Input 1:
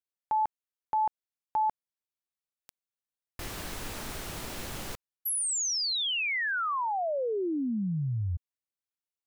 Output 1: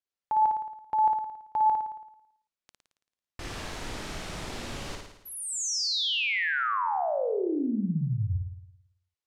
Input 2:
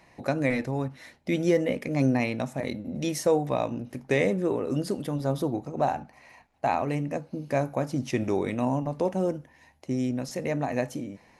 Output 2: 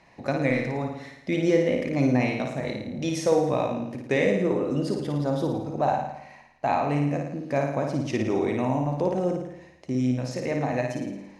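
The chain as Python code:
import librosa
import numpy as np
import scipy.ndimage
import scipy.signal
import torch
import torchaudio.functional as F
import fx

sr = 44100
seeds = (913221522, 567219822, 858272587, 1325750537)

y = scipy.signal.sosfilt(scipy.signal.butter(2, 6800.0, 'lowpass', fs=sr, output='sos'), x)
y = fx.room_flutter(y, sr, wall_m=9.5, rt60_s=0.8)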